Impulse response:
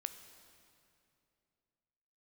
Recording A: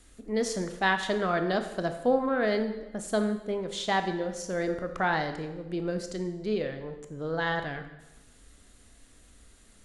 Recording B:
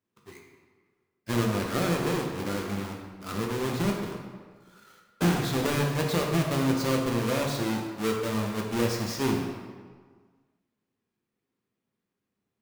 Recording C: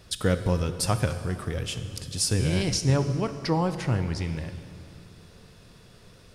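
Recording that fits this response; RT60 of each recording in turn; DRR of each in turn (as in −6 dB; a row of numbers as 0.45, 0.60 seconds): C; 1.0, 1.6, 2.7 seconds; 7.0, −0.5, 9.0 decibels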